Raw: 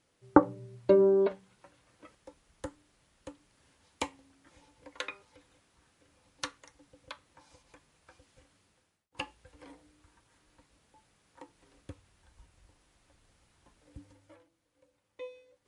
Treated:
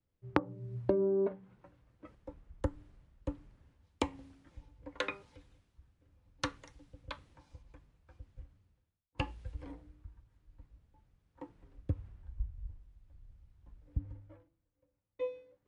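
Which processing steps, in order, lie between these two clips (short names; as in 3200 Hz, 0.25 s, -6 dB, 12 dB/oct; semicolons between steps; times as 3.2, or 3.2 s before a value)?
RIAA curve playback; compressor 20:1, threshold -33 dBFS, peak gain reduction 25 dB; three-band expander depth 70%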